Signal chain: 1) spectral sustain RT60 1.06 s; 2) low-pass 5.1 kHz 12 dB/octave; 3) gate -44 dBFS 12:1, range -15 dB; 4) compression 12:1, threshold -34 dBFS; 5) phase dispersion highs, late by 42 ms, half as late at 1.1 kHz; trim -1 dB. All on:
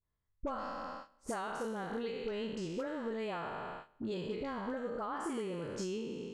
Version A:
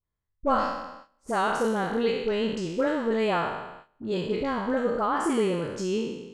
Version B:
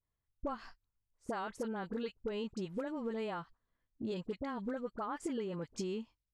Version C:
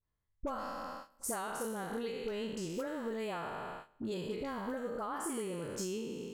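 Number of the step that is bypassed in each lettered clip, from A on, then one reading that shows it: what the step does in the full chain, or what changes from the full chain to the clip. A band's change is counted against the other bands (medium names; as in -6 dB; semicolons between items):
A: 4, mean gain reduction 10.0 dB; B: 1, 250 Hz band +3.0 dB; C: 2, 8 kHz band +9.5 dB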